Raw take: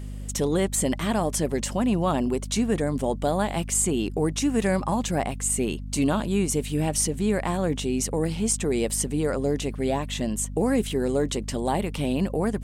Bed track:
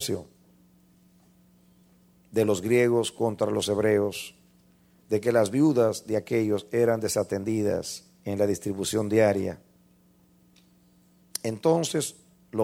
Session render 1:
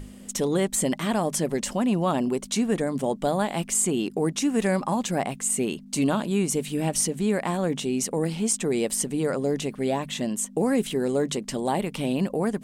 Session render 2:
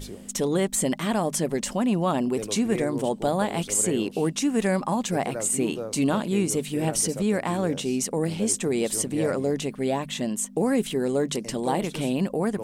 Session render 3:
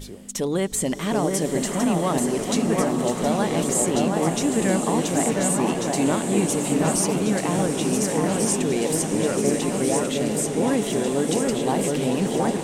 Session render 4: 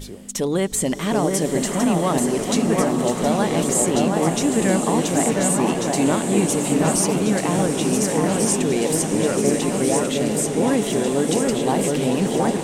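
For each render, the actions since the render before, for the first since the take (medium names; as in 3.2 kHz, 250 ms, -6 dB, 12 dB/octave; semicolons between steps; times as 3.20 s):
hum notches 50/100/150 Hz
add bed track -11.5 dB
echo whose repeats swap between lows and highs 721 ms, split 2.3 kHz, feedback 77%, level -3 dB; swelling reverb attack 1030 ms, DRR 5.5 dB
trim +2.5 dB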